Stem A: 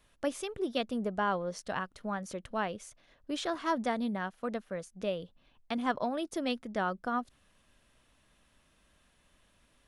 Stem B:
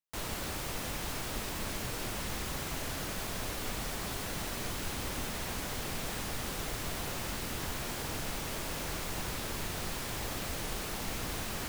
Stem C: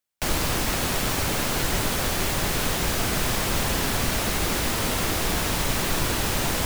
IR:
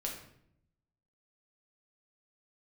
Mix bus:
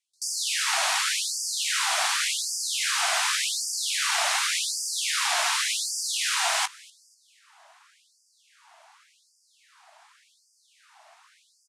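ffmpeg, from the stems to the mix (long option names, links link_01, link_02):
-filter_complex "[1:a]tiltshelf=frequency=1100:gain=9,volume=-12.5dB,asplit=2[link_01][link_02];[link_02]volume=-5dB[link_03];[2:a]volume=0.5dB,asplit=3[link_04][link_05][link_06];[link_05]volume=-4.5dB[link_07];[link_06]volume=-19.5dB[link_08];[3:a]atrim=start_sample=2205[link_09];[link_07][link_09]afir=irnorm=-1:irlink=0[link_10];[link_03][link_08]amix=inputs=2:normalize=0,aecho=0:1:244|488|732|976|1220|1464:1|0.41|0.168|0.0689|0.0283|0.0116[link_11];[link_01][link_04][link_10][link_11]amix=inputs=4:normalize=0,lowpass=frequency=9600:width=0.5412,lowpass=frequency=9600:width=1.3066,afftfilt=real='re*gte(b*sr/1024,600*pow(4700/600,0.5+0.5*sin(2*PI*0.88*pts/sr)))':imag='im*gte(b*sr/1024,600*pow(4700/600,0.5+0.5*sin(2*PI*0.88*pts/sr)))':win_size=1024:overlap=0.75"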